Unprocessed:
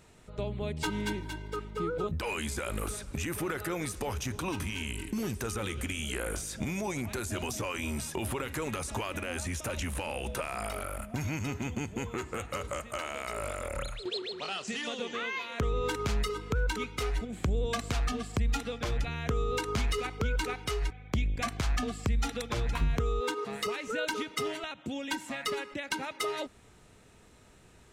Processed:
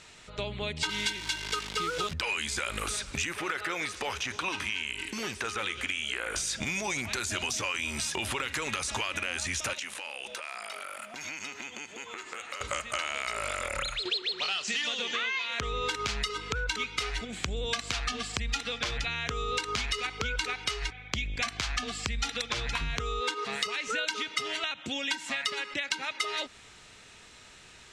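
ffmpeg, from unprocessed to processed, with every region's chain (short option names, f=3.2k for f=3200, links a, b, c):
-filter_complex "[0:a]asettb=1/sr,asplit=3[a][b][c];[a]atrim=end=0.894[d];[b]atrim=start=0.89:end=2.14,asetpts=PTS-STARTPTS,afade=t=in:d=0.004:c=qsin,afade=t=out:st=1.246:d=0.004:c=qsin,highshelf=f=2.1k:g=11,acrusher=bits=8:dc=4:mix=0:aa=0.000001[e];[c]atrim=start=2.136[f];[d][e]acrossfade=d=0.004:c1=hsin:c2=qsin[g];[g][f]acrossfade=d=0.004:c1=qsin:c2=hsin,asettb=1/sr,asplit=3[h][i][j];[h]atrim=end=3.324[k];[i]atrim=start=3.32:end=6.36,asetpts=PTS-STARTPTS,afade=t=in:d=0.004:c=qsin,afade=t=out:st=3.036:d=0.004:c=qsin,acrossover=split=3200[l][m];[m]acompressor=threshold=-48dB:ratio=4:attack=1:release=60[n];[l][n]amix=inputs=2:normalize=0,highpass=42,bass=f=250:g=-8,treble=f=4k:g=0[o];[j]atrim=start=6.356[p];[k][o]acrossfade=d=0.004:c1=hsin:c2=qsin[q];[q][p]acrossfade=d=0.004:c1=qsin:c2=hsin,asettb=1/sr,asplit=3[r][s][t];[r]atrim=end=9.734[u];[s]atrim=start=9.73:end=12.61,asetpts=PTS-STARTPTS,afade=t=in:d=0.004:c=qsin,afade=t=out:st=2.876:d=0.004:c=qsin,highpass=320,acompressor=threshold=-42dB:ratio=12:attack=3.2:release=140:knee=1:detection=peak[v];[t]atrim=start=12.606[w];[u][v]acrossfade=d=0.004:c1=hsin:c2=qsin[x];[x][w]acrossfade=d=0.004:c1=qsin:c2=hsin,lowpass=5.5k,tiltshelf=f=1.2k:g=-9.5,acompressor=threshold=-35dB:ratio=6,volume=7dB"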